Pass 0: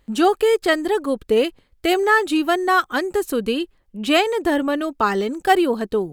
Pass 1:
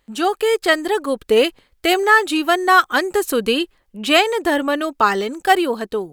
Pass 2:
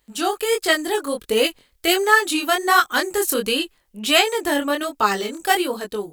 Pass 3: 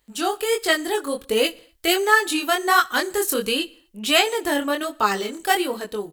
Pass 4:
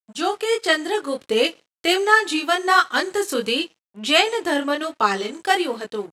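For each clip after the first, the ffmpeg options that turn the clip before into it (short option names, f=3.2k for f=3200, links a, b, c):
-af "lowshelf=f=410:g=-9,dynaudnorm=f=170:g=5:m=8.5dB"
-af "highshelf=f=4.3k:g=11.5,flanger=delay=18.5:depth=6.5:speed=1.4,volume=-1dB"
-af "aecho=1:1:61|122|183|244:0.0631|0.036|0.0205|0.0117,volume=-1.5dB"
-af "aeval=exprs='sgn(val(0))*max(abs(val(0))-0.00531,0)':c=same,highpass=110,lowpass=6.9k,volume=1.5dB"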